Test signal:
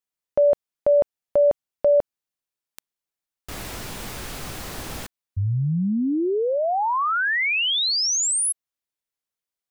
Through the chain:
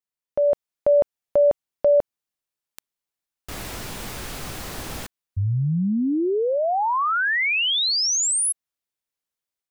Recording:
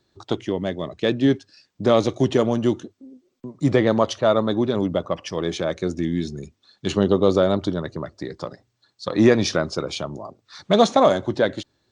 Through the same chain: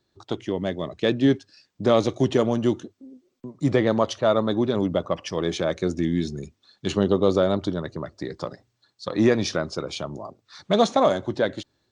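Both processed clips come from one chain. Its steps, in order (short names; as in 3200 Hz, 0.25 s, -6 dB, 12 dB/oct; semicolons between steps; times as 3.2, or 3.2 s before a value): AGC gain up to 5.5 dB; gain -5 dB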